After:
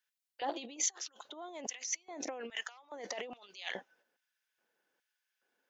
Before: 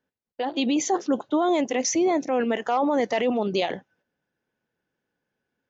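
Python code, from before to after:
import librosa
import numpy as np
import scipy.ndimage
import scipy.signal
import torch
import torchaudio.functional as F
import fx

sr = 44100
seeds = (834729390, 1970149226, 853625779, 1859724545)

y = fx.high_shelf(x, sr, hz=5000.0, db=4.0)
y = fx.over_compress(y, sr, threshold_db=-29.0, ratio=-0.5)
y = fx.filter_lfo_highpass(y, sr, shape='square', hz=1.2, low_hz=450.0, high_hz=2000.0, q=0.71)
y = y * librosa.db_to_amplitude(-5.5)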